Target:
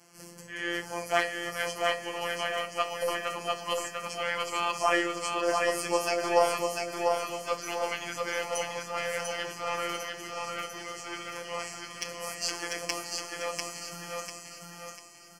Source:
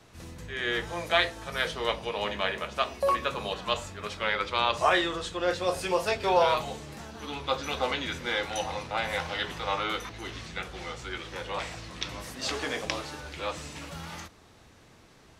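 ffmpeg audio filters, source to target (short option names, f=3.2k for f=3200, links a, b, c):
-af "highpass=130,bass=f=250:g=-2,treble=f=4k:g=9,aeval=exprs='0.596*(cos(1*acos(clip(val(0)/0.596,-1,1)))-cos(1*PI/2))+0.188*(cos(2*acos(clip(val(0)/0.596,-1,1)))-cos(2*PI/2))+0.0211*(cos(8*acos(clip(val(0)/0.596,-1,1)))-cos(8*PI/2))':c=same,afftfilt=real='hypot(re,im)*cos(PI*b)':imag='0':win_size=1024:overlap=0.75,asuperstop=centerf=3700:order=4:qfactor=3.1,aecho=1:1:695|1390|2085|2780|3475:0.668|0.267|0.107|0.0428|0.0171"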